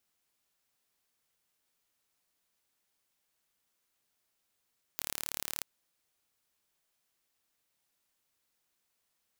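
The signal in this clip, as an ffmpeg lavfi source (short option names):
-f lavfi -i "aevalsrc='0.376*eq(mod(n,1202),0)':d=0.63:s=44100"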